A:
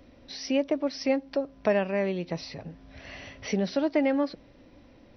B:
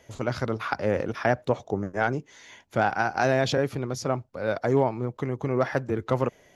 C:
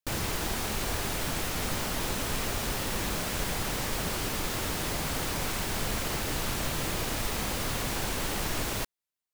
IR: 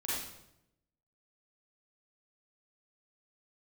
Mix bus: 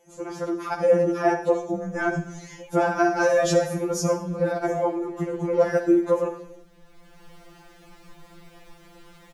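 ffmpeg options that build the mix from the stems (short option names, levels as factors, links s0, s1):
-filter_complex "[0:a]aemphasis=mode=reproduction:type=riaa,acompressor=threshold=0.0891:ratio=6,adelay=2100,volume=0.398[s0];[1:a]equalizer=f=250:t=o:w=1:g=9,equalizer=f=2000:t=o:w=1:g=-4,equalizer=f=4000:t=o:w=1:g=-10,equalizer=f=8000:t=o:w=1:g=9,dynaudnorm=f=110:g=11:m=4.47,volume=0.708,asplit=3[s1][s2][s3];[s2]volume=0.299[s4];[2:a]lowpass=f=1800:p=1,bandreject=f=86.4:t=h:w=4,bandreject=f=172.8:t=h:w=4,bandreject=f=259.2:t=h:w=4,bandreject=f=345.6:t=h:w=4,bandreject=f=432:t=h:w=4,bandreject=f=518.4:t=h:w=4,bandreject=f=604.8:t=h:w=4,bandreject=f=691.2:t=h:w=4,bandreject=f=777.6:t=h:w=4,bandreject=f=864:t=h:w=4,bandreject=f=950.4:t=h:w=4,bandreject=f=1036.8:t=h:w=4,bandreject=f=1123.2:t=h:w=4,bandreject=f=1209.6:t=h:w=4,bandreject=f=1296:t=h:w=4,bandreject=f=1382.4:t=h:w=4,bandreject=f=1468.8:t=h:w=4,bandreject=f=1555.2:t=h:w=4,bandreject=f=1641.6:t=h:w=4,bandreject=f=1728:t=h:w=4,bandreject=f=1814.4:t=h:w=4,bandreject=f=1900.8:t=h:w=4,bandreject=f=1987.2:t=h:w=4,bandreject=f=2073.6:t=h:w=4,bandreject=f=2160:t=h:w=4,bandreject=f=2246.4:t=h:w=4,bandreject=f=2332.8:t=h:w=4,bandreject=f=2419.2:t=h:w=4,bandreject=f=2505.6:t=h:w=4,bandreject=f=2592:t=h:w=4,bandreject=f=2678.4:t=h:w=4,bandreject=f=2764.8:t=h:w=4,bandreject=f=2851.2:t=h:w=4,bandreject=f=2937.6:t=h:w=4,bandreject=f=3024:t=h:w=4,bandreject=f=3110.4:t=h:w=4,adelay=1450,volume=0.188,afade=t=in:st=6.83:d=0.48:silence=0.473151,asplit=2[s5][s6];[s6]volume=0.282[s7];[s3]apad=whole_len=475651[s8];[s5][s8]sidechaincompress=threshold=0.0794:ratio=8:attack=9.2:release=1320[s9];[3:a]atrim=start_sample=2205[s10];[s4][s7]amix=inputs=2:normalize=0[s11];[s11][s10]afir=irnorm=-1:irlink=0[s12];[s0][s1][s9][s12]amix=inputs=4:normalize=0,highshelf=f=10000:g=3,afftfilt=real='re*2.83*eq(mod(b,8),0)':imag='im*2.83*eq(mod(b,8),0)':win_size=2048:overlap=0.75"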